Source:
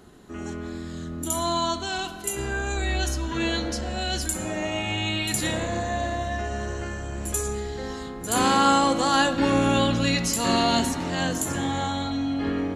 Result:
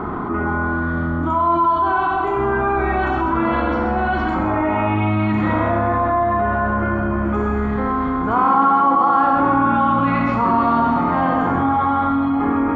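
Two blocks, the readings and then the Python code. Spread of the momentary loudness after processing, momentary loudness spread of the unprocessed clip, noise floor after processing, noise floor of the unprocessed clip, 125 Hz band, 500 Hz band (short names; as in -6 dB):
6 LU, 12 LU, -21 dBFS, -36 dBFS, +6.5 dB, +6.5 dB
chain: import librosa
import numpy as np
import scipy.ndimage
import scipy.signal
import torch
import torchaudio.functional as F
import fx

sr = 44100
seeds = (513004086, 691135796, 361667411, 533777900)

y = fx.ladder_lowpass(x, sr, hz=1500.0, resonance_pct=35)
y = fx.low_shelf(y, sr, hz=200.0, db=-10.5)
y = y + 0.5 * np.pad(y, (int(0.9 * sr / 1000.0), 0))[:len(y)]
y = y + 10.0 ** (-6.5 / 20.0) * np.pad(y, (int(133 * sr / 1000.0), 0))[:len(y)]
y = fx.rev_schroeder(y, sr, rt60_s=1.0, comb_ms=26, drr_db=1.5)
y = fx.env_flatten(y, sr, amount_pct=70)
y = F.gain(torch.from_numpy(y), 6.0).numpy()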